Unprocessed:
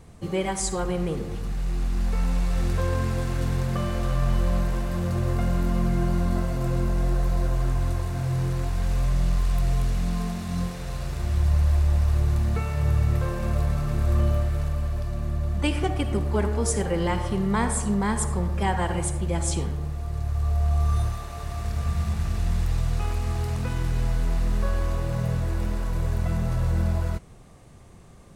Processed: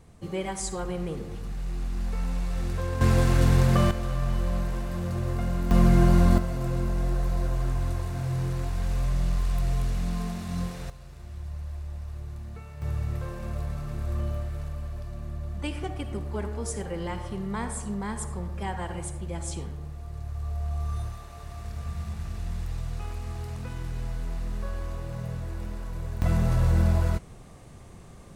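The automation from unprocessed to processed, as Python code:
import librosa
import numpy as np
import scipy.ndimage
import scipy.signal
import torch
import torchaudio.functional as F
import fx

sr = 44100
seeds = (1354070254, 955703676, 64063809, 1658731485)

y = fx.gain(x, sr, db=fx.steps((0.0, -5.0), (3.01, 5.5), (3.91, -4.0), (5.71, 5.0), (6.38, -3.0), (10.9, -15.5), (12.82, -8.0), (26.22, 2.0)))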